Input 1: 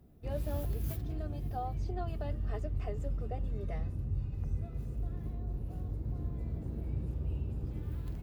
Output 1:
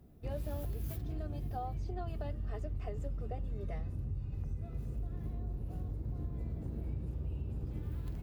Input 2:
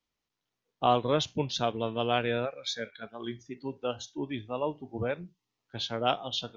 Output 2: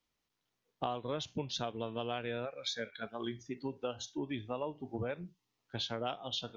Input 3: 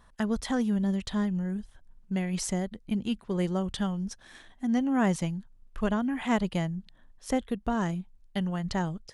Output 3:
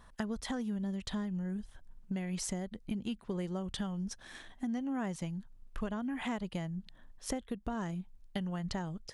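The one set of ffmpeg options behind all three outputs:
-af "acompressor=threshold=-35dB:ratio=6,volume=1dB"

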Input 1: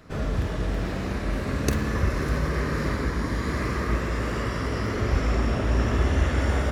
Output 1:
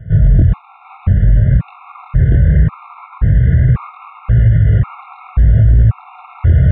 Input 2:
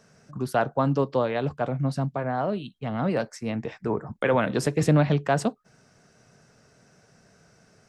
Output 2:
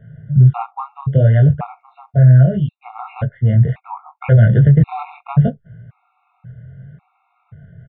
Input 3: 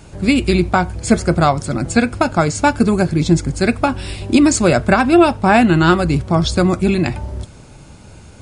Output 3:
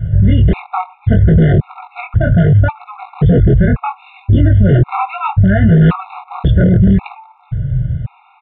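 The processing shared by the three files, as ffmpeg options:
-af "lowpass=2.2k,lowshelf=f=190:t=q:w=3:g=14,aresample=8000,aeval=exprs='0.944*(abs(mod(val(0)/0.944+3,4)-2)-1)':c=same,aresample=44100,flanger=delay=18:depth=6.4:speed=0.69,alimiter=level_in=11.5dB:limit=-1dB:release=50:level=0:latency=1,afftfilt=real='re*gt(sin(2*PI*0.93*pts/sr)*(1-2*mod(floor(b*sr/1024/710),2)),0)':imag='im*gt(sin(2*PI*0.93*pts/sr)*(1-2*mod(floor(b*sr/1024/710),2)),0)':win_size=1024:overlap=0.75,volume=-1.5dB"

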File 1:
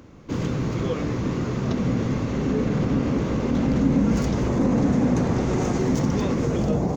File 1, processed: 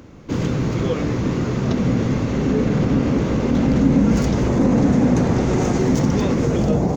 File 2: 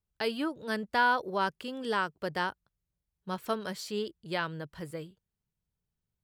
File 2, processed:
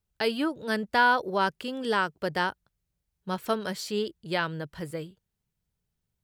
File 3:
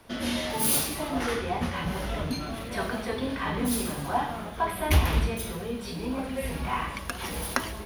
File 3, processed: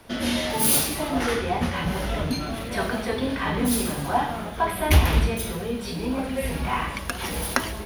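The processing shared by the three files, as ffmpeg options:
-af "equalizer=f=1.1k:w=5.3:g=-2.5,volume=4.5dB"

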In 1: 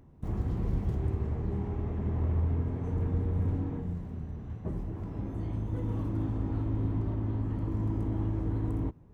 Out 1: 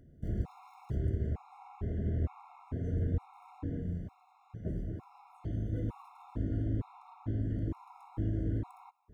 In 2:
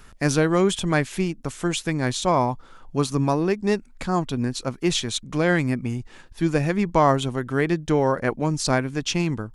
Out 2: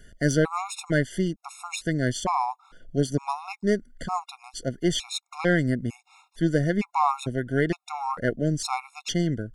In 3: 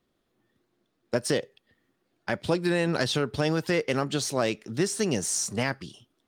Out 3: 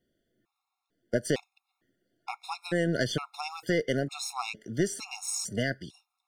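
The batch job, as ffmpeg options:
-af "aeval=exprs='0.531*(cos(1*acos(clip(val(0)/0.531,-1,1)))-cos(1*PI/2))+0.0376*(cos(4*acos(clip(val(0)/0.531,-1,1)))-cos(4*PI/2))':c=same,afftfilt=real='re*gt(sin(2*PI*1.1*pts/sr)*(1-2*mod(floor(b*sr/1024/710),2)),0)':imag='im*gt(sin(2*PI*1.1*pts/sr)*(1-2*mod(floor(b*sr/1024/710),2)),0)':win_size=1024:overlap=0.75,volume=-1.5dB"

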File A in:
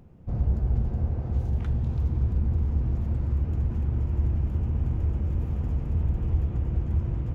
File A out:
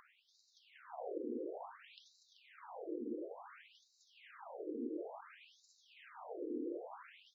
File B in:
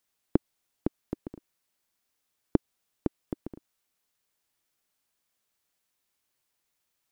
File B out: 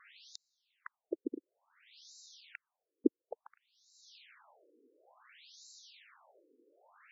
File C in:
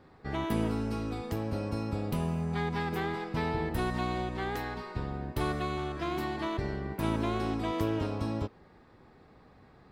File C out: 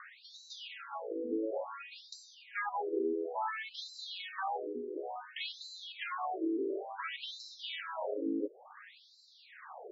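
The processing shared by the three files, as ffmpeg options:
-af "adynamicequalizer=threshold=0.00112:dfrequency=3100:dqfactor=2.1:tfrequency=3100:tqfactor=2.1:attack=5:release=100:ratio=0.375:range=2:mode=boostabove:tftype=bell,acompressor=mode=upward:threshold=-31dB:ratio=2.5,afftfilt=real='re*between(b*sr/1024,350*pow(5400/350,0.5+0.5*sin(2*PI*0.57*pts/sr))/1.41,350*pow(5400/350,0.5+0.5*sin(2*PI*0.57*pts/sr))*1.41)':imag='im*between(b*sr/1024,350*pow(5400/350,0.5+0.5*sin(2*PI*0.57*pts/sr))/1.41,350*pow(5400/350,0.5+0.5*sin(2*PI*0.57*pts/sr))*1.41)':win_size=1024:overlap=0.75,volume=4dB"

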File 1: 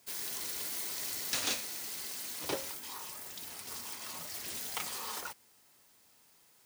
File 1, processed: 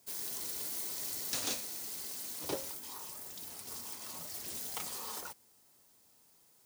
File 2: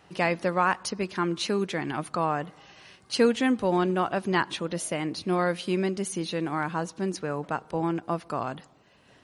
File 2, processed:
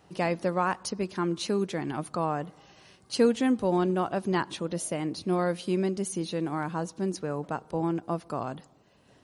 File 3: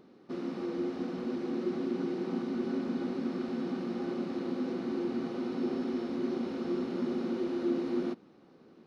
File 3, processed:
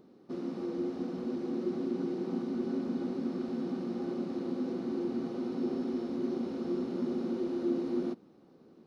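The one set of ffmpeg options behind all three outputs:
-af "equalizer=f=2.1k:w=0.61:g=-7"

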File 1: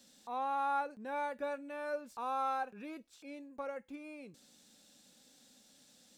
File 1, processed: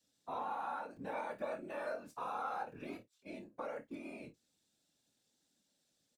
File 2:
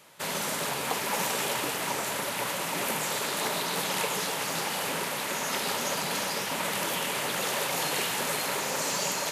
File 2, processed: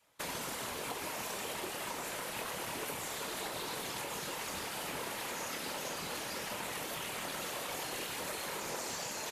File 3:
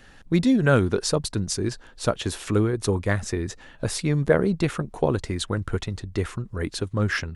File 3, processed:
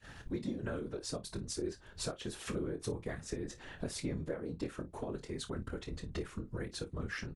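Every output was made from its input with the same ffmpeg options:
-filter_complex "[0:a]agate=range=-16dB:threshold=-50dB:ratio=16:detection=peak,adynamicequalizer=threshold=0.0112:dfrequency=360:dqfactor=2.2:tfrequency=360:tqfactor=2.2:attack=5:release=100:ratio=0.375:range=3:mode=boostabove:tftype=bell,acompressor=threshold=-37dB:ratio=8,afftfilt=real='hypot(re,im)*cos(2*PI*random(0))':imag='hypot(re,im)*sin(2*PI*random(1))':win_size=512:overlap=0.75,asplit=2[a][b];[b]aecho=0:1:25|53:0.355|0.15[c];[a][c]amix=inputs=2:normalize=0,volume=5.5dB"

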